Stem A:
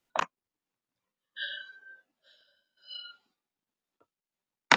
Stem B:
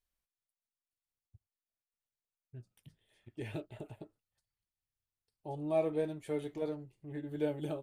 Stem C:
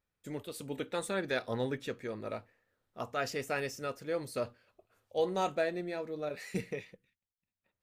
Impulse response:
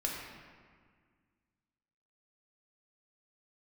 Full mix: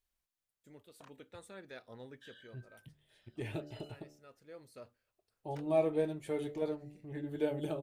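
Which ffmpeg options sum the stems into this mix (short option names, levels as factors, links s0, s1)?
-filter_complex "[0:a]acompressor=threshold=0.00316:ratio=2,asoftclip=type=tanh:threshold=0.0126,adelay=850,volume=0.282[s0];[1:a]bandreject=f=73.96:t=h:w=4,bandreject=f=147.92:t=h:w=4,bandreject=f=221.88:t=h:w=4,bandreject=f=295.84:t=h:w=4,bandreject=f=369.8:t=h:w=4,bandreject=f=443.76:t=h:w=4,bandreject=f=517.72:t=h:w=4,bandreject=f=591.68:t=h:w=4,bandreject=f=665.64:t=h:w=4,bandreject=f=739.6:t=h:w=4,bandreject=f=813.56:t=h:w=4,volume=1.19,asplit=2[s1][s2];[2:a]adelay=400,volume=0.15[s3];[s2]apad=whole_len=362643[s4];[s3][s4]sidechaincompress=threshold=0.00316:ratio=6:attack=25:release=720[s5];[s0][s1][s5]amix=inputs=3:normalize=0"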